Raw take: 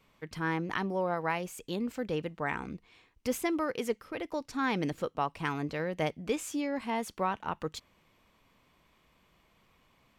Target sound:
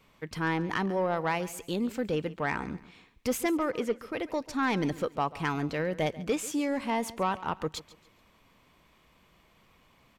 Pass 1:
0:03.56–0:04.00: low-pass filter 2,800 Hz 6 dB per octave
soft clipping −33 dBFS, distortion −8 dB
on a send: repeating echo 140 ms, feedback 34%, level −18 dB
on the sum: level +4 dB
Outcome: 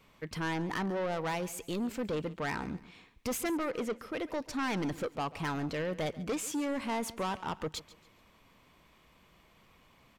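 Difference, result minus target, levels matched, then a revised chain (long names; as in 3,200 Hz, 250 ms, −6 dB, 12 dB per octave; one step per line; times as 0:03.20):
soft clipping: distortion +11 dB
0:03.56–0:04.00: low-pass filter 2,800 Hz 6 dB per octave
soft clipping −22.5 dBFS, distortion −18 dB
on a send: repeating echo 140 ms, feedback 34%, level −18 dB
on the sum: level +4 dB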